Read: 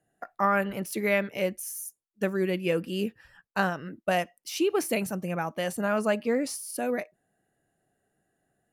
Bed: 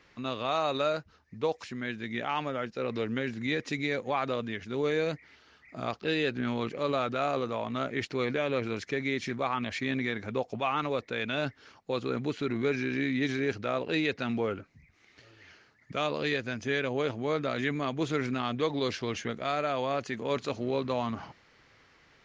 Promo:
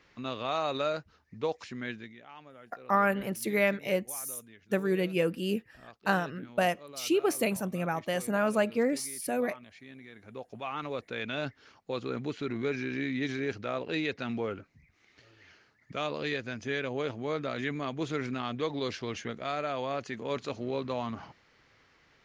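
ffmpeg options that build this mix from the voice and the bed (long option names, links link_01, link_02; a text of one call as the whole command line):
ffmpeg -i stem1.wav -i stem2.wav -filter_complex "[0:a]adelay=2500,volume=-1dB[link_01];[1:a]volume=13.5dB,afade=type=out:start_time=1.9:duration=0.25:silence=0.149624,afade=type=in:start_time=10.1:duration=1.09:silence=0.16788[link_02];[link_01][link_02]amix=inputs=2:normalize=0" out.wav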